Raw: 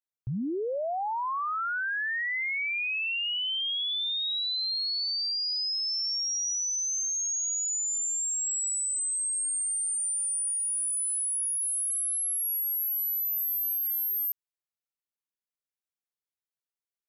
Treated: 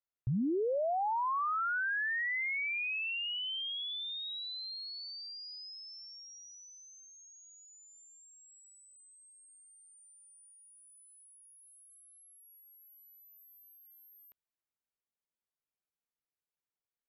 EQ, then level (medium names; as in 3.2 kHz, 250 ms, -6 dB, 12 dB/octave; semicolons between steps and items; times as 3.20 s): distance through air 380 m; 0.0 dB